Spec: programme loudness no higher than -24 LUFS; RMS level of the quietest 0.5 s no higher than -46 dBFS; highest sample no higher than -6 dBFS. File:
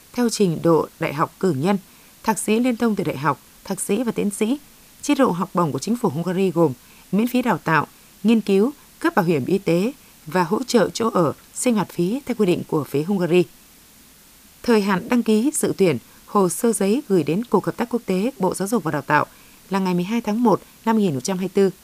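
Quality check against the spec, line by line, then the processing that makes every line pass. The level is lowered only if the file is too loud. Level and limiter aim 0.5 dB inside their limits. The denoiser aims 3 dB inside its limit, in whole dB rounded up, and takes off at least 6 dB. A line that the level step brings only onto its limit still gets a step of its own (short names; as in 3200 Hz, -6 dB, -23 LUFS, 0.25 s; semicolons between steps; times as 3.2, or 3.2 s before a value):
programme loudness -21.0 LUFS: fail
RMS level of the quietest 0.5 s -49 dBFS: OK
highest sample -2.5 dBFS: fail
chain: gain -3.5 dB; limiter -6.5 dBFS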